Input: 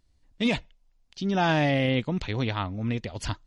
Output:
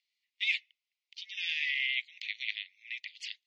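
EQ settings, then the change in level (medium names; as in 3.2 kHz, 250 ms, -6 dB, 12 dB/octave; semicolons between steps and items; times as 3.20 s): steep high-pass 2 kHz 96 dB/octave; distance through air 60 m; tape spacing loss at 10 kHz 22 dB; +8.5 dB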